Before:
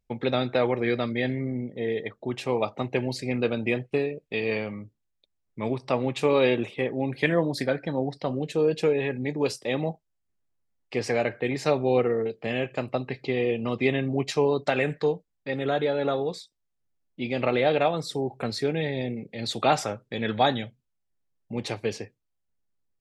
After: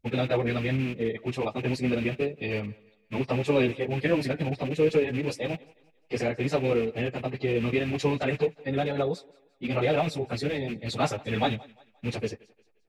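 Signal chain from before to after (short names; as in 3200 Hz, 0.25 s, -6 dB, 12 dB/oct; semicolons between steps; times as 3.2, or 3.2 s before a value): rattling part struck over -32 dBFS, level -23 dBFS; low shelf 230 Hz +8 dB; thinning echo 0.313 s, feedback 38%, high-pass 230 Hz, level -22.5 dB; plain phase-vocoder stretch 0.56×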